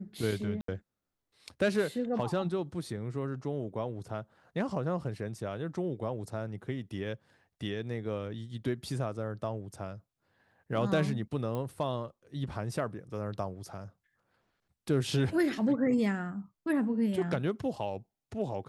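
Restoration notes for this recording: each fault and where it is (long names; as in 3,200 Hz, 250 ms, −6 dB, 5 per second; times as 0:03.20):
0:00.61–0:00.68: drop-out 73 ms
0:11.55: click −24 dBFS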